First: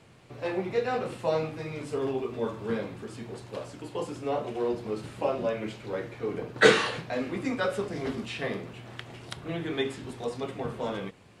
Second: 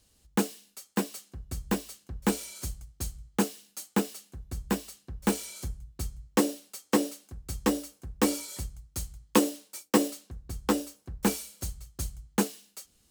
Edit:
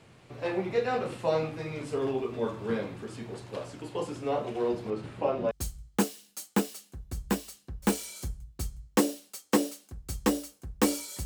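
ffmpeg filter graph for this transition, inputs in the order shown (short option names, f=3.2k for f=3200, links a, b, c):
-filter_complex "[0:a]asettb=1/sr,asplit=3[a][b][c];[a]atrim=end=4.904[d];[b]atrim=start=4.9:end=5.51,asetpts=PTS-STARTPTS,afade=t=in:d=0.004:c=qsin,afade=t=out:st=0.606:d=0.004:c=qsin,highshelf=f=4.3k:g=-11.5[e];[c]atrim=start=5.506[f];[d][e]acrossfade=d=0.004:c1=hsin:c2=qsin[g];[g][f]acrossfade=d=0.004:c1=qsin:c2=hsin,apad=whole_dur=11.25,atrim=end=11.25,atrim=end=5.512[h];[1:a]atrim=start=2.908:end=8.65[i];[h][i]acrossfade=d=0.004:c1=hsin:c2=hsin"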